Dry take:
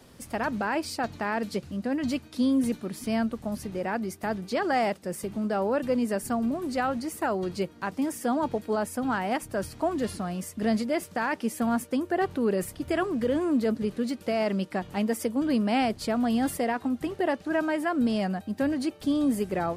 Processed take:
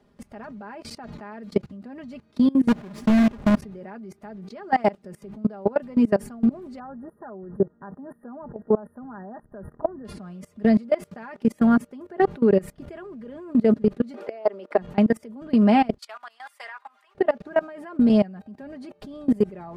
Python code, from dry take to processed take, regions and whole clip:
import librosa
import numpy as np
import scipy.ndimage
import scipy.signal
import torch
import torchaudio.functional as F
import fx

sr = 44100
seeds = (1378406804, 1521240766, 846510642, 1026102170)

y = fx.chain(x, sr, fx.halfwave_hold(),
    fx.gate_hold(open_db=-28.0, close_db=-35.0, hold_ms=71.0, range_db=-21, attack_ms=1.4, release_ms=100.0),
    fx.doppler_dist(depth_ms=0.25), at=(2.68, 3.59))
y = fx.chain(y, sr, fx.brickwall_bandstop(low_hz=1900.0, high_hz=9200.0),
    fx.high_shelf(hz=2800.0, db=-11.5), at=(6.79, 10.05))
y = fx.chain(y, sr, fx.highpass(hz=400.0, slope=24),
    fx.tilt_eq(slope=-2.0),
    fx.band_squash(depth_pct=100), at=(14.14, 14.78))
y = fx.chain(y, sr, fx.highpass(hz=1000.0, slope=24),
    fx.band_widen(depth_pct=40), at=(15.98, 17.15))
y = fx.lowpass(y, sr, hz=1400.0, slope=6)
y = y + 0.64 * np.pad(y, (int(4.9 * sr / 1000.0), 0))[:len(y)]
y = fx.level_steps(y, sr, step_db=23)
y = y * 10.0 ** (7.5 / 20.0)